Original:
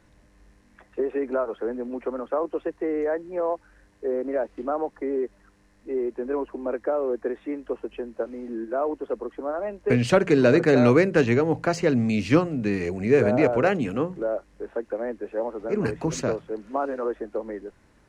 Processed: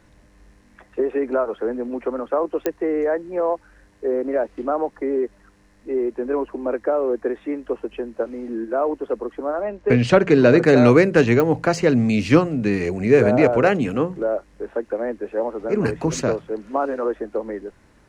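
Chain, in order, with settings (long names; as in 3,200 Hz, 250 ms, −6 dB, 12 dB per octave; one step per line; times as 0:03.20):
0:09.62–0:10.59: high-frequency loss of the air 65 metres
digital clicks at 0:02.66/0:11.40, −13 dBFS
level +4.5 dB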